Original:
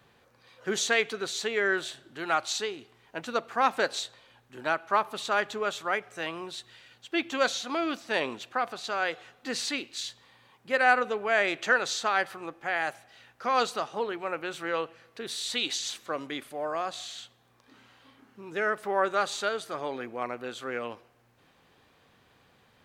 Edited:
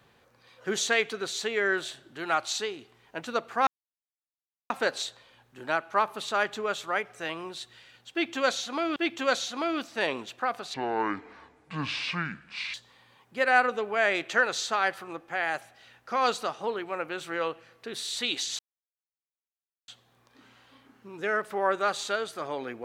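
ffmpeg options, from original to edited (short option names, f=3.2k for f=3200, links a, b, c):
-filter_complex "[0:a]asplit=7[a][b][c][d][e][f][g];[a]atrim=end=3.67,asetpts=PTS-STARTPTS,afade=t=out:st=3.666:d=0.004:c=hsin,apad=pad_dur=1.03[h];[b]atrim=start=3.67:end=7.932,asetpts=PTS-STARTPTS,afade=t=in:d=0.004:c=hsin[i];[c]atrim=start=7.088:end=8.874[j];[d]atrim=start=8.87:end=10.07,asetpts=PTS-STARTPTS,asetrate=26460,aresample=44100[k];[e]atrim=start=10.066:end=15.92,asetpts=PTS-STARTPTS,afade=t=out:st=5.85:d=0.004:c=hsin[l];[f]atrim=start=15.92:end=17.21,asetpts=PTS-STARTPTS,volume=0[m];[g]atrim=start=17.21,asetpts=PTS-STARTPTS,afade=t=in:d=0.004:c=hsin[n];[h][i]concat=n=2:v=0:a=1[o];[o][j]acrossfade=d=0.004:c1=hsin:c2=hsin[p];[p][k]acrossfade=d=0.004:c1=hsin:c2=hsin[q];[l][m][n]concat=n=3:v=0:a=1[r];[q][r]acrossfade=d=0.004:c1=hsin:c2=hsin"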